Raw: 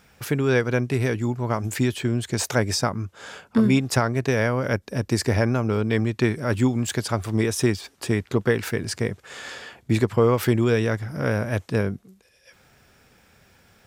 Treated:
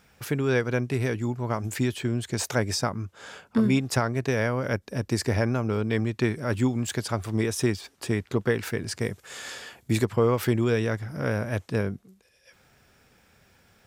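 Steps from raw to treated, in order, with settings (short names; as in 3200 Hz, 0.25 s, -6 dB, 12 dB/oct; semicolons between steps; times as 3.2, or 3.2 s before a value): 9.01–10.05 high shelf 6000 Hz +11.5 dB; gain -3.5 dB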